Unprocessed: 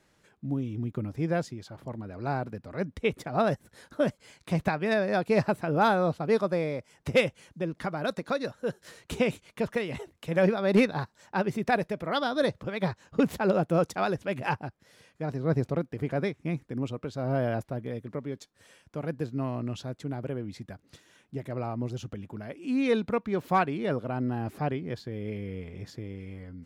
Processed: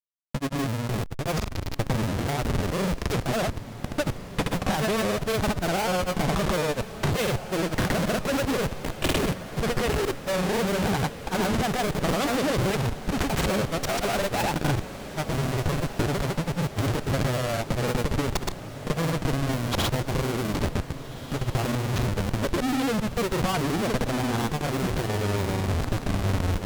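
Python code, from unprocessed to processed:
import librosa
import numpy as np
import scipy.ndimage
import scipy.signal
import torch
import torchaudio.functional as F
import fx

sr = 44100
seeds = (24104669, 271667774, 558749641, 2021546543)

p1 = fx.schmitt(x, sr, flips_db=-41.0)
p2 = fx.cheby_harmonics(p1, sr, harmonics=(4,), levels_db=(-14,), full_scale_db=-23.5)
p3 = fx.granulator(p2, sr, seeds[0], grain_ms=100.0, per_s=20.0, spray_ms=100.0, spread_st=0)
p4 = p3 + fx.echo_diffused(p3, sr, ms=1628, feedback_pct=59, wet_db=-13.0, dry=0)
y = p4 * 10.0 ** (6.5 / 20.0)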